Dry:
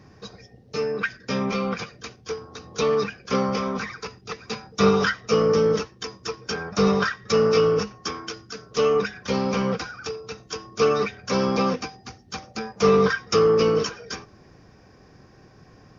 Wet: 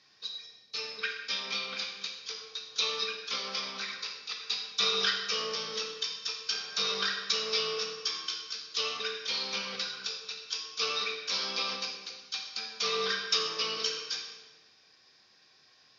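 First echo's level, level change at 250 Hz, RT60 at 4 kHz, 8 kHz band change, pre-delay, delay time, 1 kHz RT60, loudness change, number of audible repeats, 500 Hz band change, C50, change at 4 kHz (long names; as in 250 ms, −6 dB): no echo audible, −26.0 dB, 1.0 s, can't be measured, 13 ms, no echo audible, 1.2 s, −8.5 dB, no echo audible, −19.0 dB, 4.5 dB, +4.5 dB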